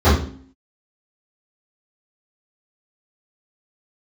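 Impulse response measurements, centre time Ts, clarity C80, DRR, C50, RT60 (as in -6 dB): 42 ms, 8.5 dB, -16.0 dB, 3.5 dB, 0.50 s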